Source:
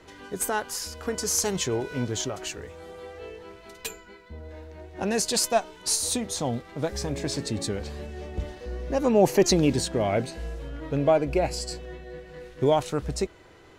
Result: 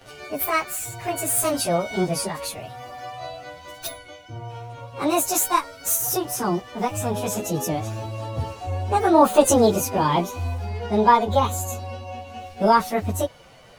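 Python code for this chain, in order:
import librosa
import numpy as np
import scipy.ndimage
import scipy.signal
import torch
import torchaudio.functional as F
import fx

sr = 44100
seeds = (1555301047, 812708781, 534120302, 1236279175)

y = fx.pitch_bins(x, sr, semitones=7.0)
y = y * 10.0 ** (7.5 / 20.0)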